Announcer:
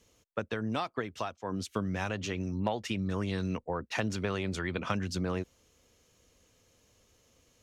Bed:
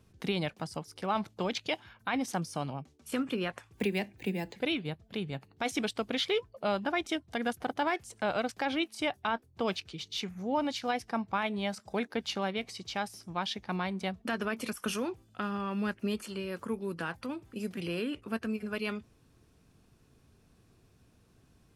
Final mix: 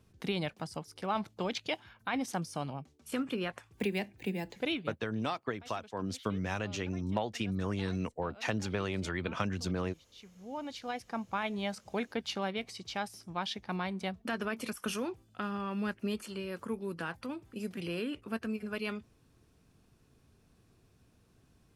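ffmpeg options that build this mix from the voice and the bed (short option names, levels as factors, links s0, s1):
-filter_complex "[0:a]adelay=4500,volume=0.841[s0];[1:a]volume=8.91,afade=t=out:st=4.73:d=0.31:silence=0.0891251,afade=t=in:st=10.09:d=1.46:silence=0.0891251[s1];[s0][s1]amix=inputs=2:normalize=0"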